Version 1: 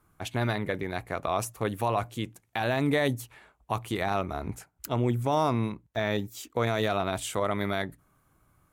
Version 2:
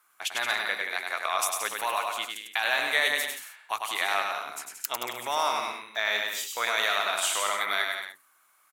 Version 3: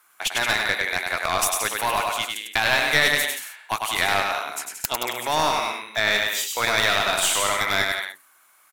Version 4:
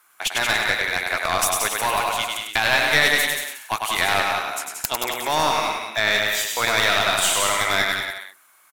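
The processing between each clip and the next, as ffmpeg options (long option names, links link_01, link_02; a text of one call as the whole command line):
ffmpeg -i in.wav -filter_complex "[0:a]highpass=1400,asplit=2[link_01][link_02];[link_02]aecho=0:1:100|175|231.2|273.4|305.1:0.631|0.398|0.251|0.158|0.1[link_03];[link_01][link_03]amix=inputs=2:normalize=0,volume=7.5dB" out.wav
ffmpeg -i in.wav -af "equalizer=frequency=1200:width=5.2:gain=-4,aeval=exprs='clip(val(0),-1,0.0422)':channel_layout=same,volume=7.5dB" out.wav
ffmpeg -i in.wav -af "aecho=1:1:186:0.422,volume=1dB" out.wav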